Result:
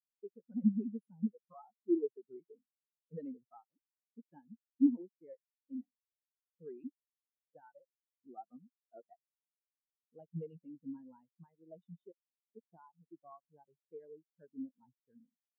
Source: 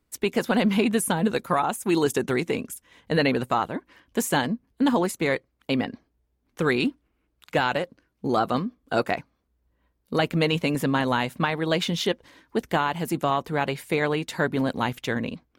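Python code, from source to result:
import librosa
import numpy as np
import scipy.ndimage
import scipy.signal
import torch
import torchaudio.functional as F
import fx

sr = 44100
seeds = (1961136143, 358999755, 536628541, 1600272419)

y = fx.spectral_expand(x, sr, expansion=4.0)
y = F.gain(torch.from_numpy(y), -7.5).numpy()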